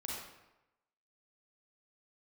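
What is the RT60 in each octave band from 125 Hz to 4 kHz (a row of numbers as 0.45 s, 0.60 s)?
0.95 s, 0.90 s, 0.95 s, 0.95 s, 0.85 s, 0.70 s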